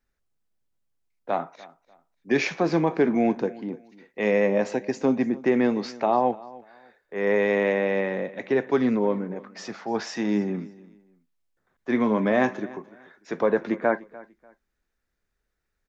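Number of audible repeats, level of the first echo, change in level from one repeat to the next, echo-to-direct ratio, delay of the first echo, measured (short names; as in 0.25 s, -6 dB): 2, -20.5 dB, -11.5 dB, -20.0 dB, 0.295 s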